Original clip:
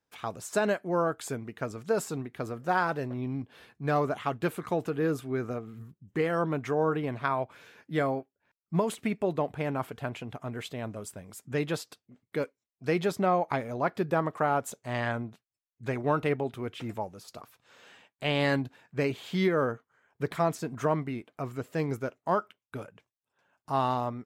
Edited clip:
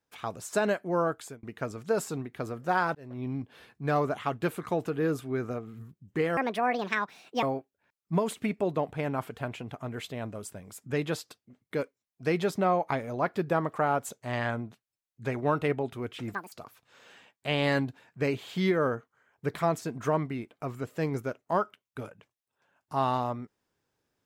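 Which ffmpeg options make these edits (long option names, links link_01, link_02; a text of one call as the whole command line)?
ffmpeg -i in.wav -filter_complex "[0:a]asplit=7[link_01][link_02][link_03][link_04][link_05][link_06][link_07];[link_01]atrim=end=1.43,asetpts=PTS-STARTPTS,afade=type=out:start_time=1.11:duration=0.32[link_08];[link_02]atrim=start=1.43:end=2.95,asetpts=PTS-STARTPTS,afade=type=in:duration=0.004:curve=hsin,afade=type=out:start_time=1.516:duration=0.004:curve=hsin[link_09];[link_03]atrim=start=2.95:end=6.374,asetpts=PTS-STARTPTS,afade=type=in:duration=0.33[link_10];[link_04]atrim=start=6.37:end=8.04,asetpts=PTS-STARTPTS,asetrate=69678,aresample=44100,atrim=end_sample=46612,asetpts=PTS-STARTPTS[link_11];[link_05]atrim=start=8.036:end=16.954[link_12];[link_06]atrim=start=16.95:end=17.29,asetpts=PTS-STARTPTS,asetrate=81144,aresample=44100[link_13];[link_07]atrim=start=17.286[link_14];[link_08][link_09][link_10]concat=n=3:v=0:a=1[link_15];[link_15][link_11]acrossfade=duration=0.004:curve1=hsin:curve2=hsin[link_16];[link_16][link_12]acrossfade=duration=0.004:curve1=hsin:curve2=hsin[link_17];[link_17][link_13]acrossfade=duration=0.004:curve1=hsin:curve2=hsin[link_18];[link_18][link_14]acrossfade=duration=0.004:curve1=hsin:curve2=hsin" out.wav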